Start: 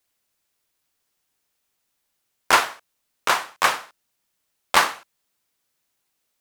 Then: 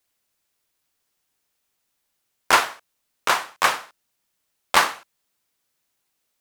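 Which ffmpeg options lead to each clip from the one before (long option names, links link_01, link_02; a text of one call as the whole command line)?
ffmpeg -i in.wav -af anull out.wav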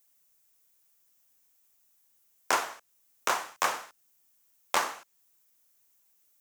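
ffmpeg -i in.wav -filter_complex "[0:a]acrossover=split=220|1100|8000[link_01][link_02][link_03][link_04];[link_01]acompressor=threshold=-56dB:ratio=4[link_05];[link_02]acompressor=threshold=-24dB:ratio=4[link_06];[link_03]acompressor=threshold=-28dB:ratio=4[link_07];[link_04]acompressor=threshold=-53dB:ratio=4[link_08];[link_05][link_06][link_07][link_08]amix=inputs=4:normalize=0,aexciter=amount=3:drive=3.6:freq=5800,volume=-3dB" out.wav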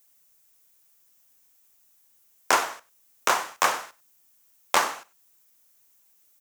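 ffmpeg -i in.wav -af "aecho=1:1:95:0.0794,volume=5.5dB" out.wav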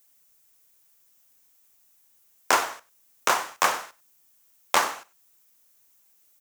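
ffmpeg -i in.wav -af "acrusher=bits=4:mode=log:mix=0:aa=0.000001" out.wav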